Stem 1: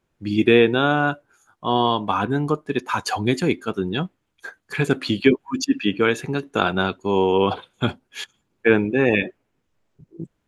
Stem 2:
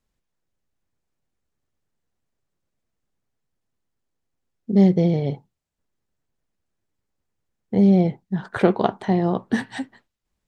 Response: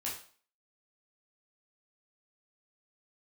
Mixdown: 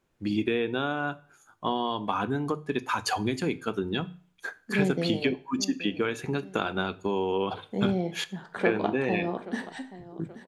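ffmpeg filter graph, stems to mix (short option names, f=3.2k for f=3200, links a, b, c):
-filter_complex "[0:a]acompressor=threshold=-24dB:ratio=6,bandreject=f=60:t=h:w=6,bandreject=f=120:t=h:w=6,bandreject=f=180:t=h:w=6,volume=-1dB,asplit=2[a][b];[b]volume=-16dB[c];[1:a]highpass=210,volume=-10.5dB,asplit=3[d][e][f];[e]volume=-7dB[g];[f]volume=-13.5dB[h];[2:a]atrim=start_sample=2205[i];[c][g]amix=inputs=2:normalize=0[j];[j][i]afir=irnorm=-1:irlink=0[k];[h]aecho=0:1:828|1656|2484|3312|4140|4968:1|0.44|0.194|0.0852|0.0375|0.0165[l];[a][d][k][l]amix=inputs=4:normalize=0,bandreject=f=50:t=h:w=6,bandreject=f=100:t=h:w=6,bandreject=f=150:t=h:w=6"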